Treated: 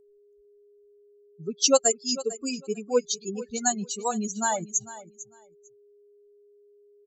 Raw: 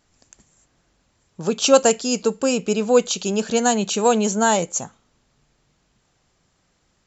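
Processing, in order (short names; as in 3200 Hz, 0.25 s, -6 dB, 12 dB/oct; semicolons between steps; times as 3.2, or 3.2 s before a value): per-bin expansion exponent 3; resonant high shelf 3800 Hz +6.5 dB, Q 1.5; whine 410 Hz -52 dBFS; on a send: feedback echo 0.449 s, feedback 17%, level -16 dB; on the sum: gain -4 dB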